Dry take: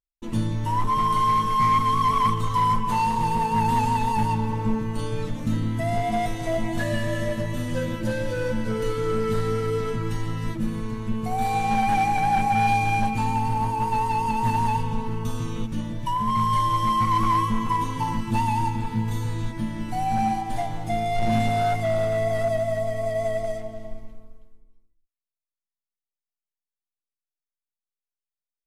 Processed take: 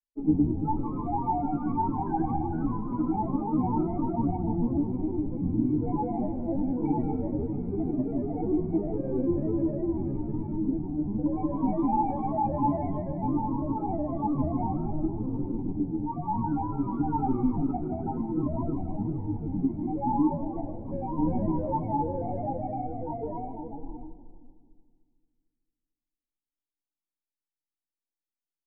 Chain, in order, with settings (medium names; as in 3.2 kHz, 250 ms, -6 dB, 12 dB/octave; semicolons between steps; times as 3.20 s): granulator, pitch spread up and down by 7 st; cascade formant filter u; two-band feedback delay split 380 Hz, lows 224 ms, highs 156 ms, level -12.5 dB; trim +8.5 dB